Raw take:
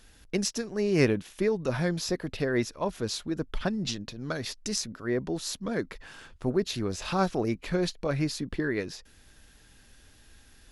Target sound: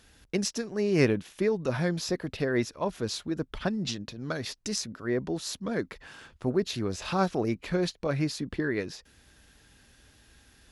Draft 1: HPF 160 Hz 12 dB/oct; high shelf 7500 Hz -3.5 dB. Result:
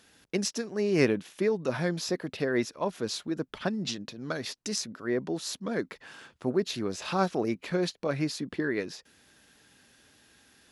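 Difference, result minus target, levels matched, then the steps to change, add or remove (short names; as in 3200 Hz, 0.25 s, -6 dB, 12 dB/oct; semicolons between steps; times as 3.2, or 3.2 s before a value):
125 Hz band -3.0 dB
change: HPF 44 Hz 12 dB/oct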